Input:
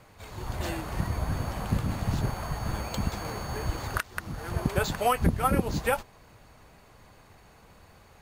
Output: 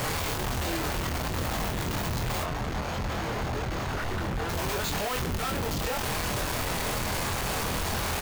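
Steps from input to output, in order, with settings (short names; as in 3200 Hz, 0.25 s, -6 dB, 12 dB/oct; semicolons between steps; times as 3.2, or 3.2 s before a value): infinite clipping; 2.43–4.49 LPF 2200 Hz 6 dB/oct; doubler 24 ms -5 dB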